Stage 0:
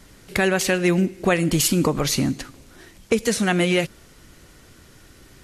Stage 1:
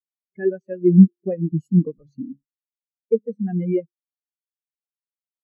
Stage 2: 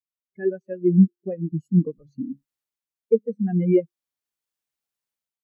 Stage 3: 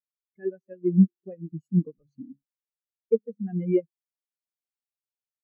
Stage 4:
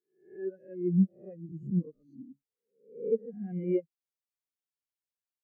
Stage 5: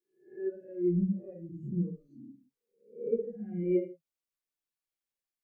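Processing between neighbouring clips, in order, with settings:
hum removal 69.78 Hz, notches 7; every bin expanded away from the loudest bin 4 to 1; level +4 dB
automatic gain control gain up to 13.5 dB; level −5.5 dB
expander for the loud parts 1.5 to 1, over −33 dBFS; level −2 dB
peak hold with a rise ahead of every peak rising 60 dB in 0.45 s; level −7 dB
convolution reverb, pre-delay 3 ms, DRR −1 dB; level −3.5 dB

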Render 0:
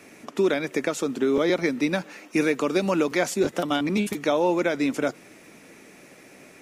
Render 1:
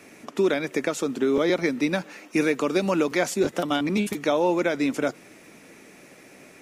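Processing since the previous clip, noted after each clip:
no processing that can be heard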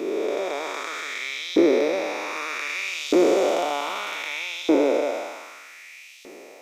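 spectrum smeared in time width 732 ms
auto-filter high-pass saw up 0.64 Hz 320–3,500 Hz
thirty-one-band graphic EQ 125 Hz −11 dB, 1,600 Hz −10 dB, 10,000 Hz −10 dB
level +7.5 dB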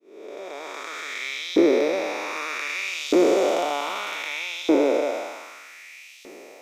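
fade in at the beginning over 1.27 s

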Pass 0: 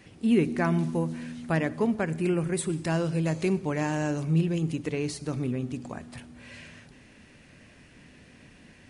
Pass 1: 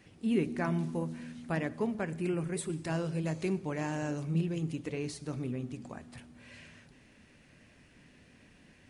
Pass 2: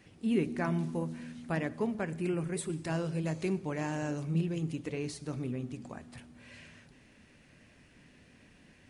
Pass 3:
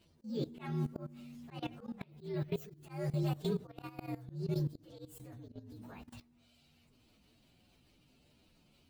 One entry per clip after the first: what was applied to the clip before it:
flanger 1.8 Hz, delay 0.1 ms, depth 7.6 ms, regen −80%; level −2 dB
no processing that can be heard
partials spread apart or drawn together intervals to 121%; output level in coarse steps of 18 dB; volume swells 230 ms; level +4 dB

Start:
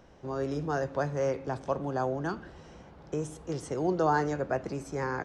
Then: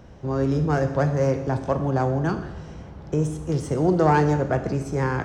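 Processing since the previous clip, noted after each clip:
phase distortion by the signal itself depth 0.062 ms
parametric band 88 Hz +10.5 dB 2.5 octaves
four-comb reverb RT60 0.95 s, combs from 26 ms, DRR 8.5 dB
level +5 dB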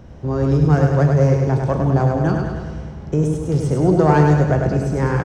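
low-shelf EQ 310 Hz +6 dB
on a send: repeating echo 102 ms, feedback 59%, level −4.5 dB
on the sum: level +1 dB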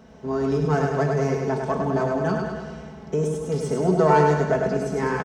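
high-pass filter 280 Hz 6 dB per octave
comb filter 4.6 ms, depth 88%
level −3.5 dB

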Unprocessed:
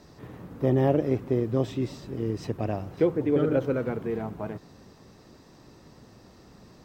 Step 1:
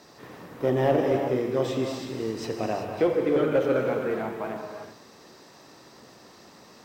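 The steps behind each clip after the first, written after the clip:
high-pass filter 600 Hz 6 dB per octave
reverb whose tail is shaped and stops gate 410 ms flat, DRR 2 dB
in parallel at −4 dB: gain into a clipping stage and back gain 24 dB
on the sum: level +1 dB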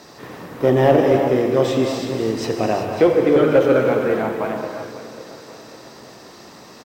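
repeating echo 541 ms, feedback 48%, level −15.5 dB
level +8.5 dB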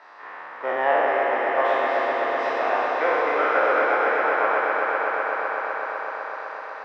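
peak hold with a decay on every bin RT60 2.39 s
flat-topped band-pass 1,300 Hz, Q 1
echo that builds up and dies away 126 ms, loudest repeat 5, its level −9 dB

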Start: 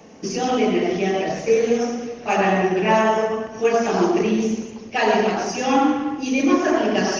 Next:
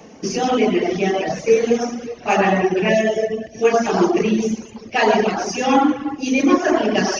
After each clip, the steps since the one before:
gain on a spectral selection 0:02.88–0:03.63, 770–1,600 Hz −20 dB
reverb reduction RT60 0.64 s
level +3.5 dB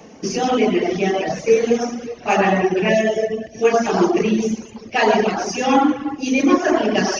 no processing that can be heard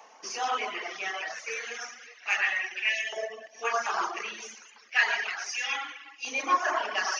auto-filter high-pass saw up 0.32 Hz 920–2,400 Hz
level −8 dB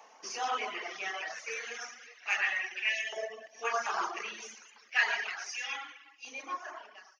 fade-out on the ending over 2.12 s
level −3.5 dB

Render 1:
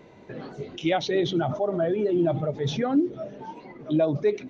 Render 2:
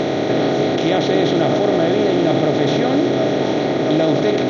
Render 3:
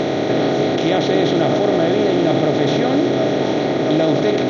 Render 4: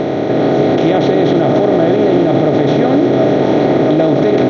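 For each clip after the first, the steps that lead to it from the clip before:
compressor on every frequency bin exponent 0.2
no processing that can be heard
high-shelf EQ 2,400 Hz −12 dB; automatic gain control; brickwall limiter −6 dBFS, peak gain reduction 5 dB; level +3.5 dB

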